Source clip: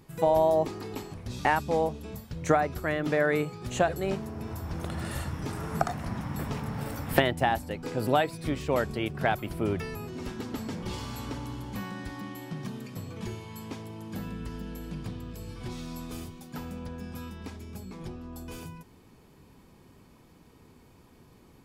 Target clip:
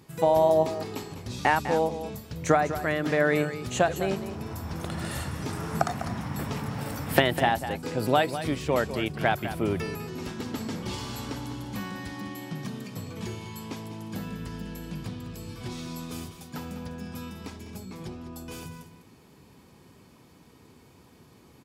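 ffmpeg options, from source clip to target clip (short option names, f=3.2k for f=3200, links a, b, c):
-filter_complex "[0:a]highpass=72,equalizer=f=5.4k:t=o:w=2.2:g=3,asplit=2[a][b];[b]aecho=0:1:201:0.266[c];[a][c]amix=inputs=2:normalize=0,volume=1.5dB"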